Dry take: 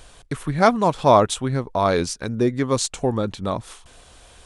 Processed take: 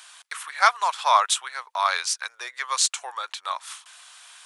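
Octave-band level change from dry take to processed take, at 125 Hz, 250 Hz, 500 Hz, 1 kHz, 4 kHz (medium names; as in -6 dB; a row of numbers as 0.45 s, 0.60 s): under -40 dB, under -40 dB, -16.0 dB, -1.0 dB, +4.0 dB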